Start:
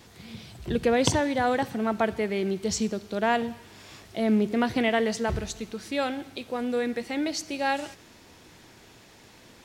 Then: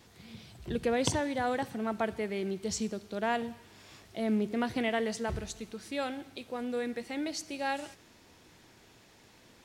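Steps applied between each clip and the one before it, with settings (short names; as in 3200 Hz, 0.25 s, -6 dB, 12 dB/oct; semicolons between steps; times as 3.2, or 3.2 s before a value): dynamic EQ 9400 Hz, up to +4 dB, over -56 dBFS, Q 1.9; gain -6.5 dB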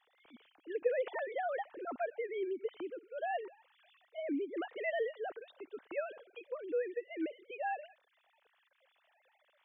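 sine-wave speech; gain -5.5 dB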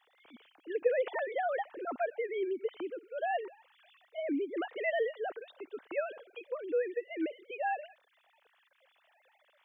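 low shelf 120 Hz -8 dB; gain +4 dB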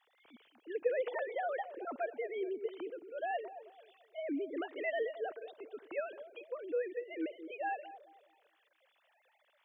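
analogue delay 0.217 s, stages 1024, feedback 39%, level -11 dB; gain -4 dB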